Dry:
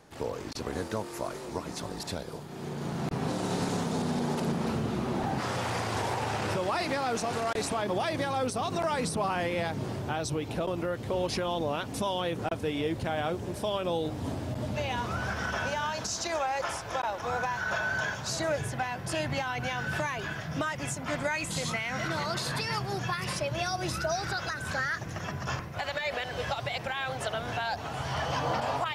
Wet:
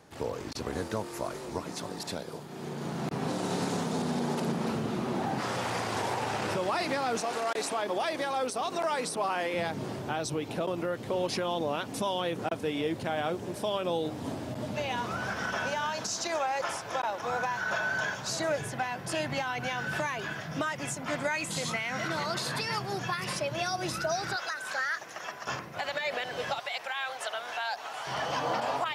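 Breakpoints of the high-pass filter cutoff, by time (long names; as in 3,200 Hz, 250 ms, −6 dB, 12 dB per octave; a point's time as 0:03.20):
45 Hz
from 0:01.63 140 Hz
from 0:07.21 320 Hz
from 0:09.54 150 Hz
from 0:24.36 560 Hz
from 0:25.47 200 Hz
from 0:26.59 700 Hz
from 0:28.07 210 Hz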